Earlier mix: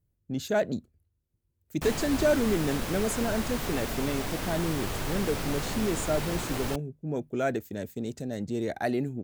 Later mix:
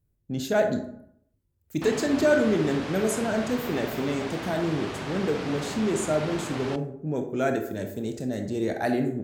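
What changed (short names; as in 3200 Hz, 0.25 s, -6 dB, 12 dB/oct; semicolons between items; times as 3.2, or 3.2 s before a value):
background: add BPF 120–4200 Hz; reverb: on, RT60 0.70 s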